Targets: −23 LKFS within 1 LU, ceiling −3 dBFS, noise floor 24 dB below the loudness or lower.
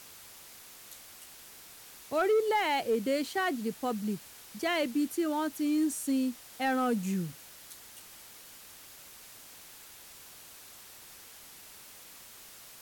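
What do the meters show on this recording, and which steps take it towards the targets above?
share of clipped samples 0.3%; peaks flattened at −21.5 dBFS; background noise floor −51 dBFS; target noise floor −55 dBFS; integrated loudness −30.5 LKFS; sample peak −21.5 dBFS; target loudness −23.0 LKFS
→ clipped peaks rebuilt −21.5 dBFS
noise reduction from a noise print 6 dB
level +7.5 dB

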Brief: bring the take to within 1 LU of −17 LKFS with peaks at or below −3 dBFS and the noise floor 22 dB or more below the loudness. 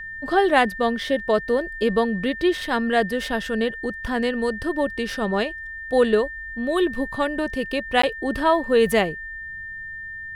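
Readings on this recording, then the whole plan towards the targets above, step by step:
number of dropouts 1; longest dropout 14 ms; interfering tone 1,800 Hz; level of the tone −32 dBFS; integrated loudness −22.5 LKFS; sample peak −4.5 dBFS; target loudness −17.0 LKFS
→ repair the gap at 0:08.02, 14 ms
notch filter 1,800 Hz, Q 30
level +5.5 dB
brickwall limiter −3 dBFS

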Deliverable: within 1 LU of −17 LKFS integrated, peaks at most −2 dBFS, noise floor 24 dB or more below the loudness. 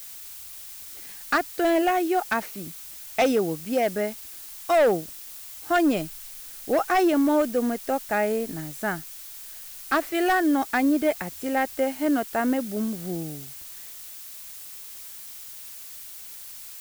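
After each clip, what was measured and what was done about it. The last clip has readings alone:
share of clipped samples 1.0%; peaks flattened at −15.5 dBFS; background noise floor −41 dBFS; target noise floor −49 dBFS; integrated loudness −24.5 LKFS; sample peak −15.5 dBFS; target loudness −17.0 LKFS
→ clipped peaks rebuilt −15.5 dBFS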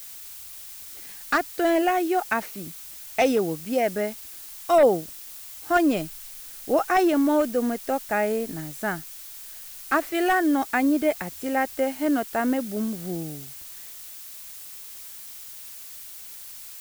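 share of clipped samples 0.0%; background noise floor −41 dBFS; target noise floor −48 dBFS
→ noise reduction from a noise print 7 dB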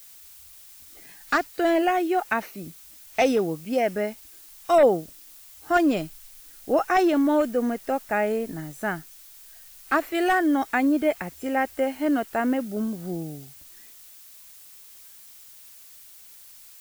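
background noise floor −48 dBFS; target noise floor −49 dBFS
→ noise reduction from a noise print 6 dB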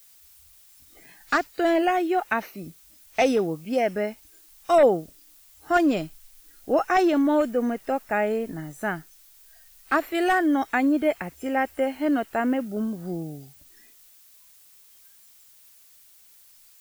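background noise floor −54 dBFS; integrated loudness −24.5 LKFS; sample peak −7.0 dBFS; target loudness −17.0 LKFS
→ level +7.5 dB
brickwall limiter −2 dBFS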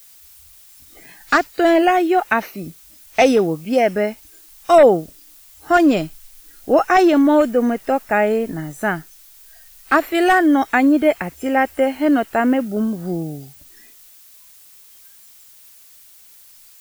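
integrated loudness −17.0 LKFS; sample peak −2.0 dBFS; background noise floor −47 dBFS

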